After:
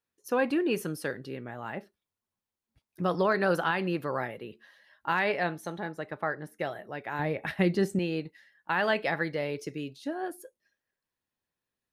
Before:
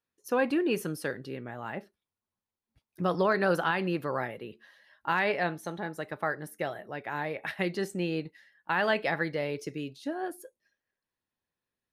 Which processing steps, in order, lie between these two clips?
5.92–6.6 LPF 3300 Hz 6 dB/oct; 7.19–7.99 low shelf 340 Hz +11 dB

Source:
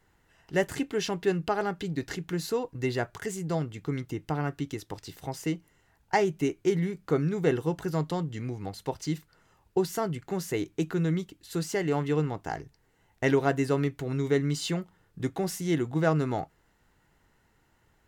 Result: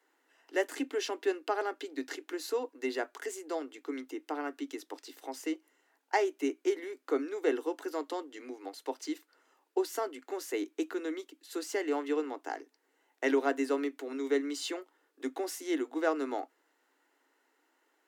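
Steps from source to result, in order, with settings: Chebyshev high-pass 260 Hz, order 8; gain -3 dB

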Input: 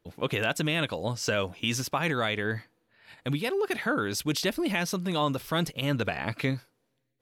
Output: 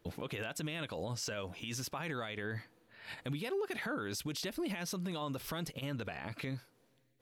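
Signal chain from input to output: compressor 6:1, threshold -38 dBFS, peak gain reduction 14.5 dB; limiter -35 dBFS, peak gain reduction 10 dB; gain +5 dB

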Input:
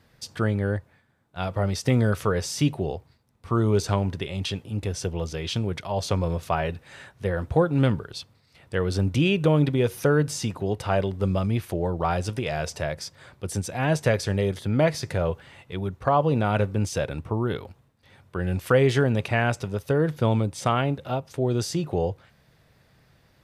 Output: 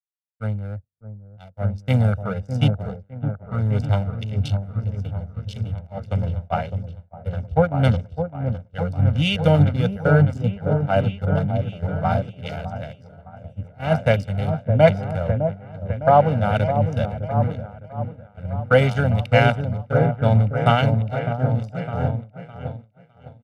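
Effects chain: Wiener smoothing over 41 samples; on a send: repeats that get brighter 0.608 s, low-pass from 750 Hz, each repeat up 1 oct, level -3 dB; on the sum: expander -22 dBFS; comb 1.4 ms, depth 94%; three-band expander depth 100%; gain -1 dB

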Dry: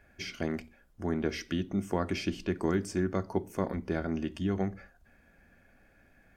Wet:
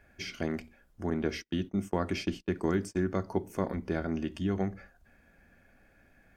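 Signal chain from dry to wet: 1.1–3.12 gate -36 dBFS, range -35 dB

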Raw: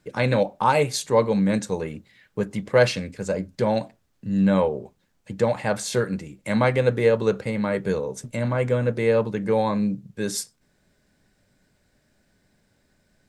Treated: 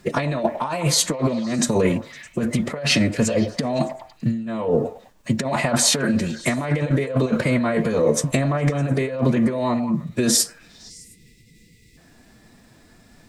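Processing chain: negative-ratio compressor -29 dBFS, ratio -1; on a send: delay with a stepping band-pass 0.102 s, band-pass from 600 Hz, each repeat 0.7 oct, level -9 dB; on the sum: spectral gain 10.9–11.97, 440–1700 Hz -30 dB; formant-preserving pitch shift +2.5 st; gain +8 dB

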